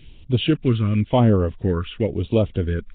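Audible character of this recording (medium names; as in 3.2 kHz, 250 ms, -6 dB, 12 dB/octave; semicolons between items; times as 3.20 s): phasing stages 2, 0.94 Hz, lowest notch 690–1500 Hz; Nellymoser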